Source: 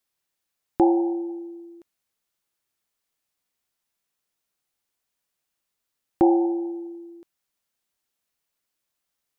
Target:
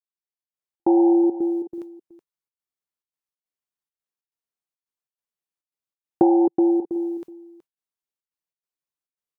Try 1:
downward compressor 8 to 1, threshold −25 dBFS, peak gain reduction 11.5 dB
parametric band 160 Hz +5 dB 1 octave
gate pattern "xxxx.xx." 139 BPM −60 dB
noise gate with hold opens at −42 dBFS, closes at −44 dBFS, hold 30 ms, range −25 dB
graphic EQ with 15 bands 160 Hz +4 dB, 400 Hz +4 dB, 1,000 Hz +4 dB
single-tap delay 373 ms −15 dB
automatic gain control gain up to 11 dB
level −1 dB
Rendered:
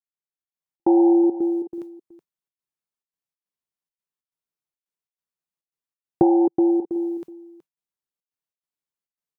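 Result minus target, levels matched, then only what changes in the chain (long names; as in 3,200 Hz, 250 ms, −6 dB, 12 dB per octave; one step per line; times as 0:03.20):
125 Hz band +5.5 dB
remove: parametric band 160 Hz +5 dB 1 octave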